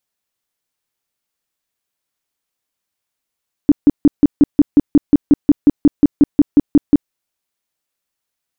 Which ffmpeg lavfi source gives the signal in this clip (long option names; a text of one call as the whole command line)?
ffmpeg -f lavfi -i "aevalsrc='0.668*sin(2*PI*290*mod(t,0.18))*lt(mod(t,0.18),8/290)':duration=3.42:sample_rate=44100" out.wav